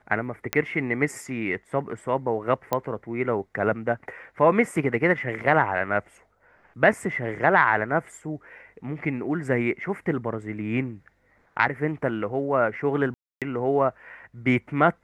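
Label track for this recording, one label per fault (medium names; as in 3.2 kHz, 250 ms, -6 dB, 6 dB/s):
0.530000	0.530000	pop -6 dBFS
2.730000	2.730000	pop -10 dBFS
13.140000	13.420000	dropout 277 ms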